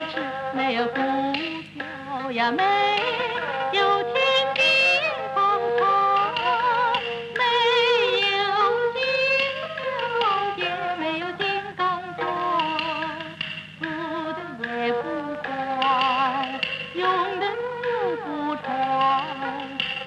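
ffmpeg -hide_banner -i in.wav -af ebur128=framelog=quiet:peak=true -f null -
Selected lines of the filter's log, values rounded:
Integrated loudness:
  I:         -22.9 LUFS
  Threshold: -33.0 LUFS
Loudness range:
  LRA:         6.5 LU
  Threshold: -42.7 LUFS
  LRA low:   -26.5 LUFS
  LRA high:  -20.0 LUFS
True peak:
  Peak:       -9.0 dBFS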